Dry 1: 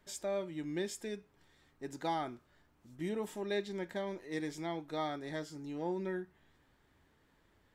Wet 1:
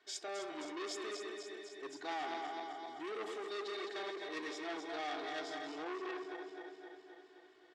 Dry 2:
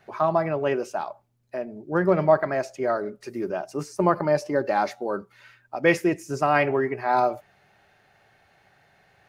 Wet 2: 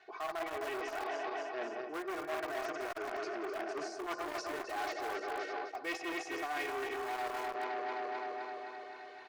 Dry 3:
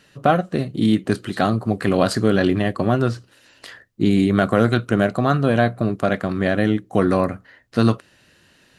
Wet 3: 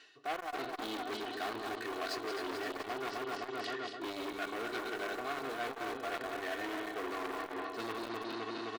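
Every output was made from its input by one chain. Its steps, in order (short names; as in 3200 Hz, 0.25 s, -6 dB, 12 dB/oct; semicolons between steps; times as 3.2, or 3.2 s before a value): regenerating reverse delay 0.13 s, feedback 78%, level -6 dB; Chebyshev band-pass 420–4800 Hz, order 2; bell 470 Hz -5.5 dB 2.1 oct; in parallel at -11 dB: wrapped overs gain 24 dB; on the sum: comb 2.7 ms, depth 100%; reverse; compressor 5:1, threshold -34 dBFS; reverse; core saturation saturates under 2000 Hz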